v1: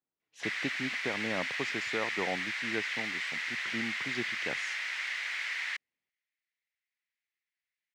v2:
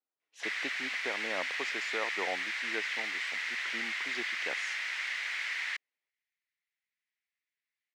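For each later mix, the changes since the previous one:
speech: add high-pass filter 420 Hz 12 dB per octave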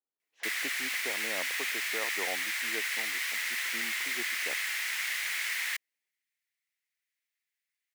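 speech: add head-to-tape spacing loss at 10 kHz 43 dB
master: remove high-frequency loss of the air 140 metres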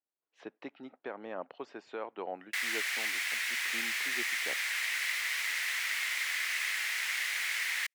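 background: entry +2.10 s
master: add high-shelf EQ 12,000 Hz −7 dB

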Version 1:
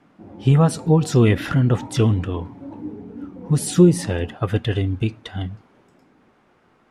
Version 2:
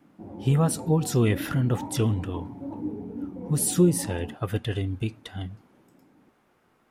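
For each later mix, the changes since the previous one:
speech −7.0 dB
master: remove high-frequency loss of the air 65 metres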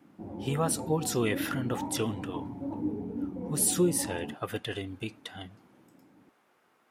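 speech: add high-pass filter 480 Hz 6 dB per octave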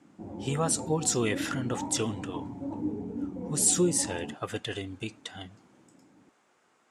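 speech: add low-pass with resonance 7,500 Hz, resonance Q 3

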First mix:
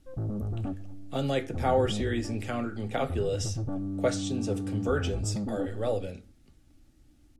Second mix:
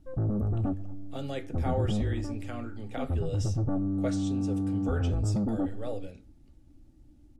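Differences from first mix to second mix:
speech −7.5 dB
background +4.0 dB

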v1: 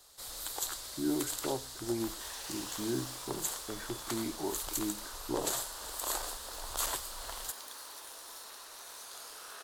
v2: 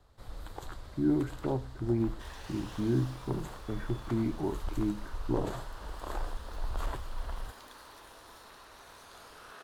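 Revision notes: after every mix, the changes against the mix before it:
first sound: add high-shelf EQ 2,400 Hz −11 dB
master: add bass and treble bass +14 dB, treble −13 dB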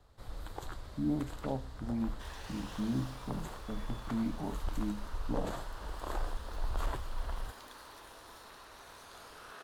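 speech: add phaser with its sweep stopped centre 360 Hz, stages 6

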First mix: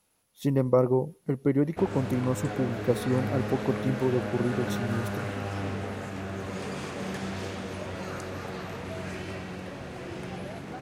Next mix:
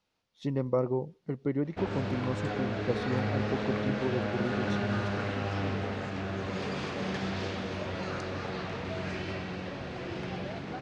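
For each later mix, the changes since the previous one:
background +6.5 dB
master: add transistor ladder low-pass 6,000 Hz, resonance 25%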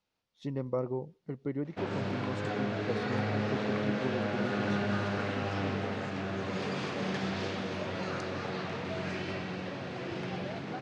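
speech −4.5 dB
background: add high-pass filter 100 Hz 24 dB per octave

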